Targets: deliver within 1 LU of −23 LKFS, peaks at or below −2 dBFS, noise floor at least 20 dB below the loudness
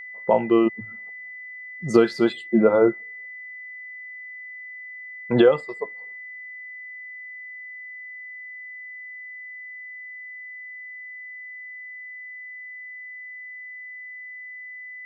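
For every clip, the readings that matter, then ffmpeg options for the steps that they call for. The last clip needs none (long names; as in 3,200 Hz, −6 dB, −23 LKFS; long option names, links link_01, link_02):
interfering tone 2,000 Hz; level of the tone −36 dBFS; integrated loudness −27.0 LKFS; sample peak −3.0 dBFS; target loudness −23.0 LKFS
→ -af "bandreject=frequency=2000:width=30"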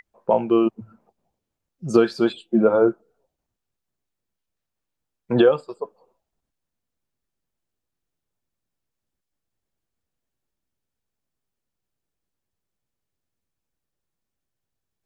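interfering tone none found; integrated loudness −20.0 LKFS; sample peak −3.0 dBFS; target loudness −23.0 LKFS
→ -af "volume=-3dB"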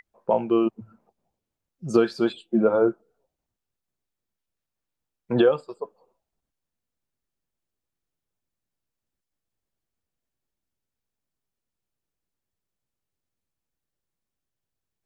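integrated loudness −23.0 LKFS; sample peak −6.0 dBFS; background noise floor −86 dBFS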